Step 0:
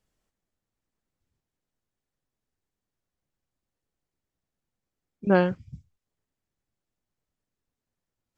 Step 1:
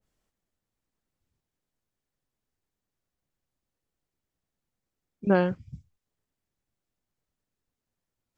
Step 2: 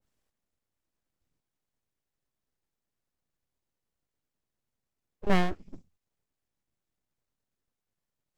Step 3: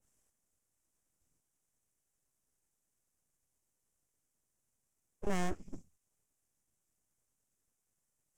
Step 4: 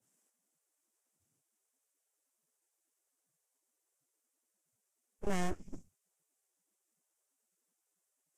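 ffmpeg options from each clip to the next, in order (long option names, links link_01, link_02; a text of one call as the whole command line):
ffmpeg -i in.wav -af "alimiter=limit=-11.5dB:level=0:latency=1:release=181,adynamicequalizer=threshold=0.0112:dfrequency=1500:dqfactor=0.7:tfrequency=1500:tqfactor=0.7:attack=5:release=100:ratio=0.375:range=2.5:mode=cutabove:tftype=highshelf" out.wav
ffmpeg -i in.wav -af "aeval=exprs='abs(val(0))':channel_layout=same" out.wav
ffmpeg -i in.wav -af "alimiter=limit=-23dB:level=0:latency=1:release=131,adynamicsmooth=sensitivity=6:basefreq=5800,aexciter=amount=14.3:drive=5.1:freq=6300" out.wav
ffmpeg -i in.wav -ar 44100 -c:a libvorbis -b:a 48k out.ogg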